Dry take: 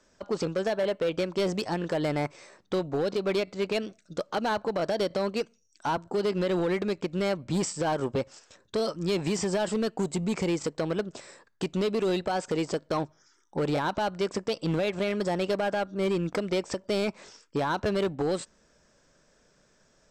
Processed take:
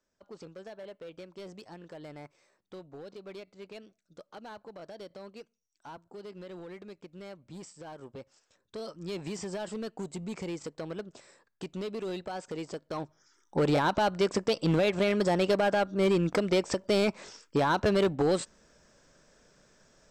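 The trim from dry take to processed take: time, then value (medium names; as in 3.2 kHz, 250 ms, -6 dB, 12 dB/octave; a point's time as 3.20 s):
7.99 s -17.5 dB
9.18 s -9 dB
12.85 s -9 dB
13.59 s +2 dB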